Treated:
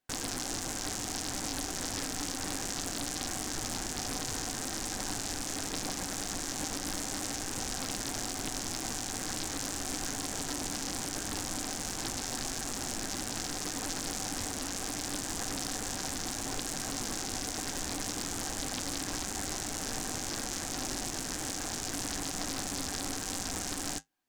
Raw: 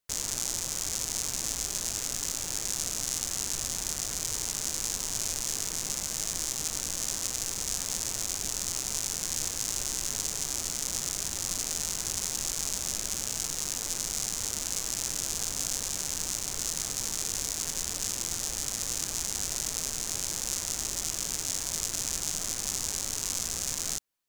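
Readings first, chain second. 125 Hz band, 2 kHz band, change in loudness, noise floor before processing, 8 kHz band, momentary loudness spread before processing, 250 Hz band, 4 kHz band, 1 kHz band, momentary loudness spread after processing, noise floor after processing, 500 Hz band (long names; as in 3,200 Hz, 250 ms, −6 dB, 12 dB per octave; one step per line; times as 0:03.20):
+1.0 dB, +2.0 dB, −4.5 dB, −36 dBFS, −6.5 dB, 1 LU, +7.5 dB, −3.0 dB, +5.0 dB, 1 LU, −38 dBFS, +3.5 dB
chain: high-shelf EQ 4,300 Hz −7 dB
brickwall limiter −20.5 dBFS, peak gain reduction 5 dB
hollow resonant body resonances 280/760/1,600 Hz, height 12 dB
flanger 0.24 Hz, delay 7.9 ms, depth 3.3 ms, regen −60%
highs frequency-modulated by the lows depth 0.6 ms
level +6.5 dB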